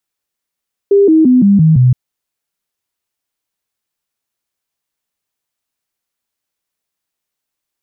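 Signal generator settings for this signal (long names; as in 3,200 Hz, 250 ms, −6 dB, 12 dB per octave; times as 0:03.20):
stepped sweep 400 Hz down, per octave 3, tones 6, 0.17 s, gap 0.00 s −4.5 dBFS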